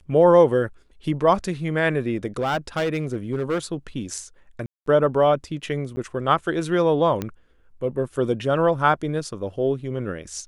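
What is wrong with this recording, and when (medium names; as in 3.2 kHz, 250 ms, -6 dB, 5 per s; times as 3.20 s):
2.39–3.59 s: clipped -19 dBFS
4.66–4.86 s: dropout 203 ms
5.96–5.97 s: dropout 10 ms
7.22 s: pop -13 dBFS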